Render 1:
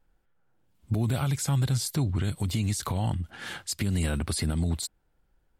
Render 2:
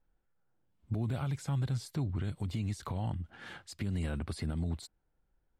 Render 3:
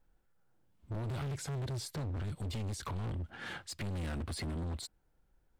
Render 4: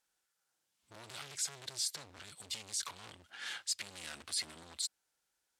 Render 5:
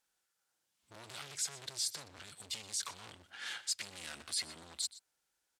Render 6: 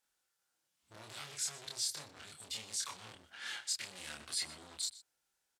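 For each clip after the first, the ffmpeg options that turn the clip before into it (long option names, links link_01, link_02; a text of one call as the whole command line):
ffmpeg -i in.wav -af "lowpass=frequency=2300:poles=1,volume=-7dB" out.wav
ffmpeg -i in.wav -af "asoftclip=type=hard:threshold=-40dB,volume=4.5dB" out.wav
ffmpeg -i in.wav -af "bandpass=frequency=6800:width_type=q:width=0.8:csg=0,volume=10dB" out.wav
ffmpeg -i in.wav -filter_complex "[0:a]asplit=2[link_01][link_02];[link_02]adelay=122.4,volume=-16dB,highshelf=frequency=4000:gain=-2.76[link_03];[link_01][link_03]amix=inputs=2:normalize=0" out.wav
ffmpeg -i in.wav -filter_complex "[0:a]asplit=2[link_01][link_02];[link_02]adelay=27,volume=-2dB[link_03];[link_01][link_03]amix=inputs=2:normalize=0,volume=-2.5dB" out.wav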